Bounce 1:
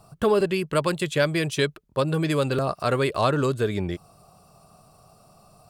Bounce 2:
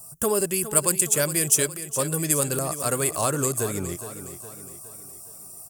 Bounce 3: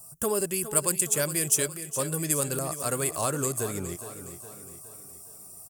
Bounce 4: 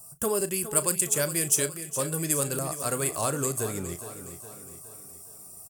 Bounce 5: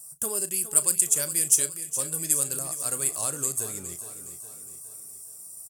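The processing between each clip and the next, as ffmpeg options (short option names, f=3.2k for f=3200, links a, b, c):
-filter_complex "[0:a]asplit=2[a][b];[b]aecho=0:1:414|828|1242|1656|2070:0.251|0.123|0.0603|0.0296|0.0145[c];[a][c]amix=inputs=2:normalize=0,aexciter=amount=15:drive=6.7:freq=6k,volume=-4dB"
-af "aecho=1:1:426|852|1278|1704:0.0891|0.0499|0.0279|0.0157,volume=-4dB"
-filter_complex "[0:a]asplit=2[a][b];[b]adelay=36,volume=-14dB[c];[a][c]amix=inputs=2:normalize=0"
-af "equalizer=f=9.1k:w=0.41:g=13.5,volume=-9dB"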